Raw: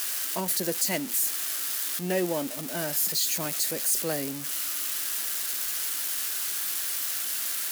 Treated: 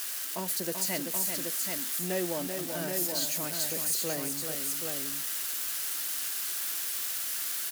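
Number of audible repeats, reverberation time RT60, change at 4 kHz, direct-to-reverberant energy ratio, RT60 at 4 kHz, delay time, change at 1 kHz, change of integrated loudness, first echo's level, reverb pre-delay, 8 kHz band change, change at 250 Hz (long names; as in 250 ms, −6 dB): 2, no reverb audible, −3.5 dB, no reverb audible, no reverb audible, 385 ms, −3.0 dB, −3.0 dB, −6.5 dB, no reverb audible, −3.0 dB, −3.0 dB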